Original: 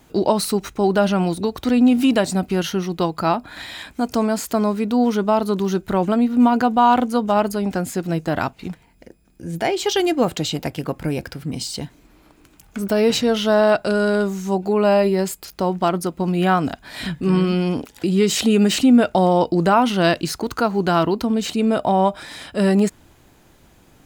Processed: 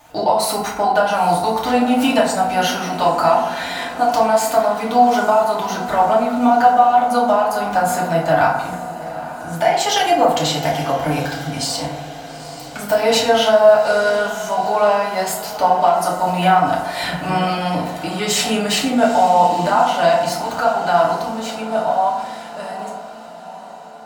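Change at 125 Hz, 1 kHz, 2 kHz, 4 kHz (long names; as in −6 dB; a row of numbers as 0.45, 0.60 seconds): −3.5, +7.5, +5.0, +4.0 decibels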